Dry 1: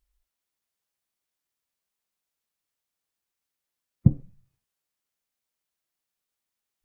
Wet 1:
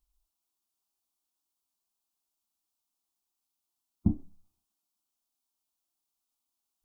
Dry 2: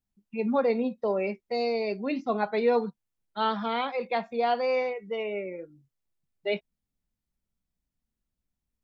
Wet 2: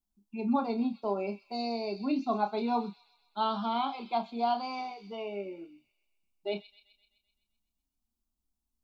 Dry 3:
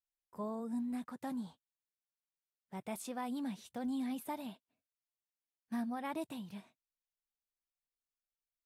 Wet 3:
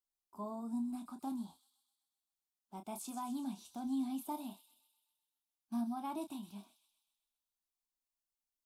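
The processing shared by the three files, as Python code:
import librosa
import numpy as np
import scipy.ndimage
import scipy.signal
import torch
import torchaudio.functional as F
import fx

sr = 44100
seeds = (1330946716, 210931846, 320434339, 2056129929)

y = fx.fixed_phaser(x, sr, hz=500.0, stages=6)
y = fx.doubler(y, sr, ms=30.0, db=-8.5)
y = fx.echo_wet_highpass(y, sr, ms=128, feedback_pct=58, hz=3600.0, wet_db=-8.0)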